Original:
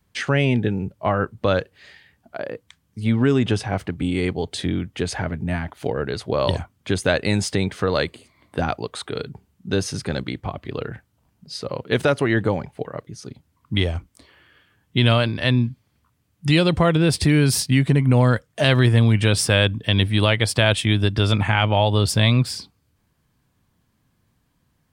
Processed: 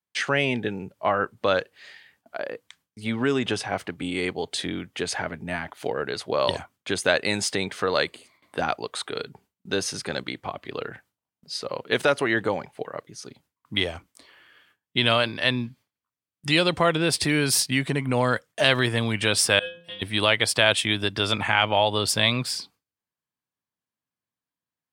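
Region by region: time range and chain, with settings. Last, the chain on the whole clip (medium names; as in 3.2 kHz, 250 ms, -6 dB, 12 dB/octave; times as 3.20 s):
19.59–20.02 s: peaking EQ 2 kHz -5.5 dB 0.83 oct + inharmonic resonator 170 Hz, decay 0.47 s, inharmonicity 0.002
whole clip: high-pass 580 Hz 6 dB/octave; gate with hold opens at -49 dBFS; trim +1 dB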